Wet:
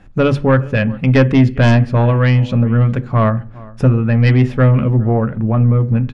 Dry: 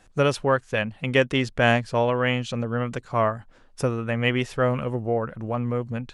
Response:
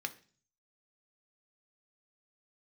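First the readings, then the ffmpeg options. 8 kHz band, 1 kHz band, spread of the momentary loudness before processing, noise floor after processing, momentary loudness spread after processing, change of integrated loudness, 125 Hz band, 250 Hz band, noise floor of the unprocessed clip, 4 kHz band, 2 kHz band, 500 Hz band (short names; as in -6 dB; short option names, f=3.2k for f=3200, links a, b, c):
n/a, +4.0 dB, 7 LU, -34 dBFS, 5 LU, +10.5 dB, +16.5 dB, +12.5 dB, -54 dBFS, +0.5 dB, +3.5 dB, +5.5 dB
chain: -filter_complex "[0:a]bass=f=250:g=10,treble=f=4k:g=-13,asplit=2[a][b];[b]adelay=408.2,volume=-23dB,highshelf=f=4k:g=-9.18[c];[a][c]amix=inputs=2:normalize=0,asplit=2[d][e];[1:a]atrim=start_sample=2205,lowshelf=f=420:g=10[f];[e][f]afir=irnorm=-1:irlink=0,volume=-2dB[g];[d][g]amix=inputs=2:normalize=0,aeval=exprs='1.68*(cos(1*acos(clip(val(0)/1.68,-1,1)))-cos(1*PI/2))+0.473*(cos(2*acos(clip(val(0)/1.68,-1,1)))-cos(2*PI/2))+0.237*(cos(5*acos(clip(val(0)/1.68,-1,1)))-cos(5*PI/2))':c=same,volume=-3.5dB"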